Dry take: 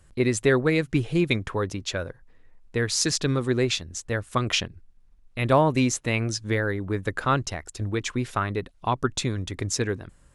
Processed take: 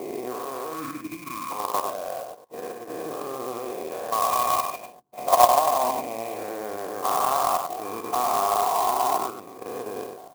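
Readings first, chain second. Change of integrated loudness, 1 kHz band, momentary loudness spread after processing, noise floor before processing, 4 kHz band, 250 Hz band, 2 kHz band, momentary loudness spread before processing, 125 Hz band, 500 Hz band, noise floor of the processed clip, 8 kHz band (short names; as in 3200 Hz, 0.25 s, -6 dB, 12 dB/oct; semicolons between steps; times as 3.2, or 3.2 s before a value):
0.0 dB, +8.5 dB, 14 LU, -56 dBFS, -6.5 dB, -11.0 dB, -9.5 dB, 9 LU, -23.0 dB, -1.0 dB, -44 dBFS, -3.0 dB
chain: spectral dilation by 0.48 s; HPF 250 Hz 12 dB/oct; spectral gain 0.72–1.5, 330–1000 Hz -20 dB; bell 990 Hz -3 dB 1.5 oct; in parallel at +2 dB: limiter -9 dBFS, peak gain reduction 10 dB; on the sum: vocal tract filter a; level quantiser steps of 10 dB; on a send: echo 98 ms -5.5 dB; on the sum: clock jitter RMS 0.052 ms; gain +6.5 dB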